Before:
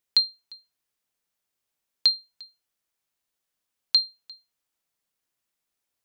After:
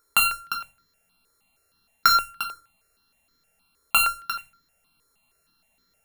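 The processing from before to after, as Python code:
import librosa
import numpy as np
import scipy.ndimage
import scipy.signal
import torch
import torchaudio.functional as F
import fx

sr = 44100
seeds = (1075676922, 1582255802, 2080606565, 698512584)

p1 = np.r_[np.sort(x[:len(x) // 32 * 32].reshape(-1, 32), axis=1).ravel(), x[len(x) // 32 * 32:]]
p2 = fx.over_compress(p1, sr, threshold_db=-26.0, ratio=-0.5)
p3 = p1 + F.gain(torch.from_numpy(p2), 1.0).numpy()
p4 = 10.0 ** (-13.0 / 20.0) * np.tanh(p3 / 10.0 ** (-13.0 / 20.0))
p5 = p4 + fx.echo_single(p4, sr, ms=89, db=-17.0, dry=0)
p6 = fx.room_shoebox(p5, sr, seeds[0], volume_m3=190.0, walls='furnished', distance_m=1.4)
p7 = fx.phaser_held(p6, sr, hz=6.4, low_hz=750.0, high_hz=2700.0)
y = F.gain(torch.from_numpy(p7), 8.0).numpy()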